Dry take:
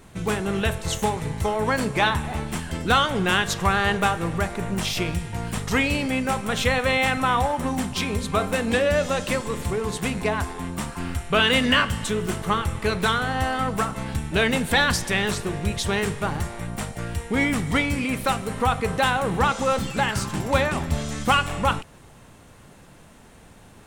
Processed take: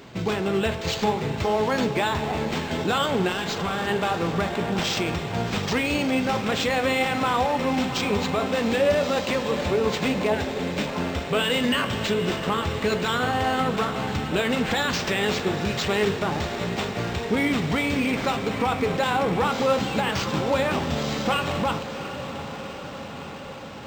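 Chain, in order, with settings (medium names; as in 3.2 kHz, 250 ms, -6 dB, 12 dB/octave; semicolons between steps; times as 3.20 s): high-pass 300 Hz 6 dB/octave; peaking EQ 1.5 kHz -6.5 dB 1.7 oct; in parallel at -1.5 dB: compression, threshold -36 dBFS, peak gain reduction 15.5 dB; on the sum: peak limiter -18 dBFS, peak gain reduction 8 dB; flange 0.76 Hz, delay 7.2 ms, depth 6.5 ms, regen +72%; 3.32–3.87 s: hard clipper -32.5 dBFS, distortion -24 dB; 10.32–10.87 s: Butterworth band-stop 1.1 kHz, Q 1.6; on a send: echo that smears into a reverb 732 ms, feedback 71%, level -11 dB; on the sum: decimation joined by straight lines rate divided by 4×; trim +8.5 dB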